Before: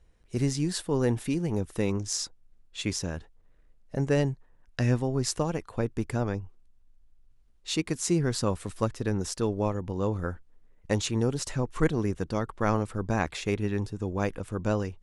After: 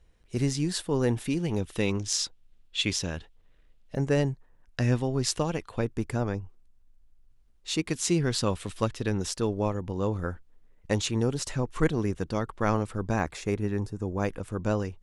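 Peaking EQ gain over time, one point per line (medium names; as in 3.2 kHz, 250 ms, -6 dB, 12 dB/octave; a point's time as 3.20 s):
peaking EQ 3.2 kHz 1.1 oct
+3 dB
from 1.37 s +10 dB
from 3.95 s +0.5 dB
from 4.92 s +7 dB
from 5.85 s 0 dB
from 7.88 s +8 dB
from 9.32 s +2 dB
from 13.20 s -7 dB
from 14.24 s -0.5 dB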